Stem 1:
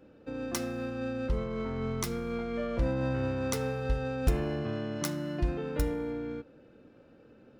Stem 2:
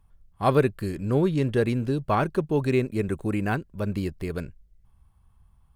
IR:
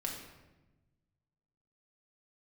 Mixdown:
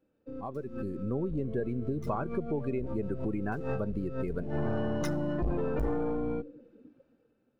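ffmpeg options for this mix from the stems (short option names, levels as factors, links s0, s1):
-filter_complex "[0:a]aeval=exprs='(tanh(70.8*val(0)+0.45)-tanh(0.45))/70.8':c=same,volume=1.06,asplit=2[s0][s1];[s1]volume=0.0891[s2];[1:a]highpass=120,acompressor=threshold=0.0447:ratio=6,adynamicequalizer=threshold=0.00501:dfrequency=1600:dqfactor=0.7:tfrequency=1600:tqfactor=0.7:attack=5:release=100:ratio=0.375:range=1.5:mode=cutabove:tftype=highshelf,volume=0.299,asplit=2[s3][s4];[s4]apad=whole_len=335148[s5];[s0][s5]sidechaincompress=threshold=0.00158:ratio=12:attack=25:release=114[s6];[2:a]atrim=start_sample=2205[s7];[s2][s7]afir=irnorm=-1:irlink=0[s8];[s6][s3][s8]amix=inputs=3:normalize=0,dynaudnorm=f=160:g=9:m=2.66,afftdn=nr=18:nf=-36"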